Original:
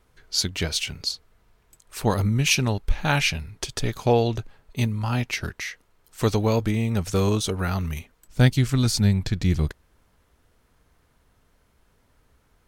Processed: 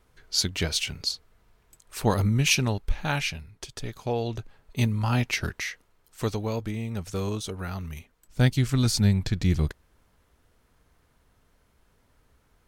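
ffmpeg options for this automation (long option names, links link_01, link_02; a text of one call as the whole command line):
ffmpeg -i in.wav -af "volume=15dB,afade=type=out:start_time=2.42:duration=1.06:silence=0.398107,afade=type=in:start_time=4.15:duration=0.8:silence=0.334965,afade=type=out:start_time=5.58:duration=0.8:silence=0.375837,afade=type=in:start_time=7.88:duration=0.99:silence=0.473151" out.wav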